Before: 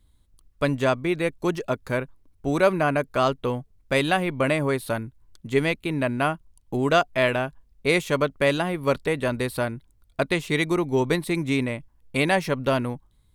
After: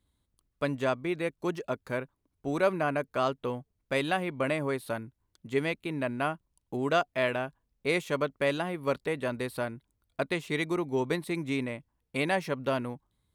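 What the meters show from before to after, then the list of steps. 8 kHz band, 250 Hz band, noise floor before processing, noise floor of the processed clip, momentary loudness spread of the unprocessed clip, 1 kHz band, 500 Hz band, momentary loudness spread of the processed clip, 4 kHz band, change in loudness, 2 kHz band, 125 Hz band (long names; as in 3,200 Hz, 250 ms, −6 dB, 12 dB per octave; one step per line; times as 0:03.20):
−9.0 dB, −7.0 dB, −62 dBFS, −80 dBFS, 9 LU, −6.5 dB, −6.5 dB, 10 LU, −7.5 dB, −7.0 dB, −7.0 dB, −9.0 dB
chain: high-pass filter 140 Hz 6 dB per octave
parametric band 12,000 Hz −3 dB 2.8 octaves
level −6 dB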